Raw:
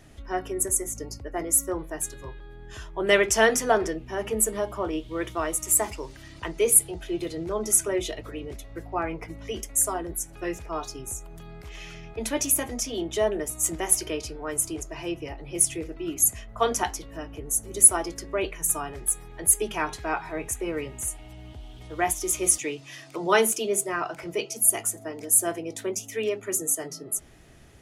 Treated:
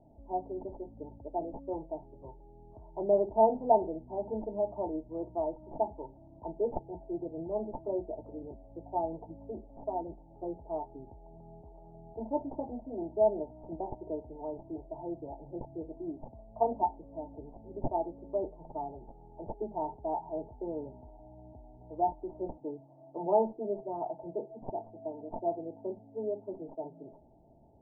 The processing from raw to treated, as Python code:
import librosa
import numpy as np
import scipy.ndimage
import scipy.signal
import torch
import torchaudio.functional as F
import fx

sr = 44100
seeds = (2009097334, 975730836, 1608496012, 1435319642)

y = fx.tracing_dist(x, sr, depth_ms=0.023)
y = scipy.signal.sosfilt(scipy.signal.cheby1(6, 6, 920.0, 'lowpass', fs=sr, output='sos'), y)
y = fx.tilt_shelf(y, sr, db=-6.5, hz=630.0)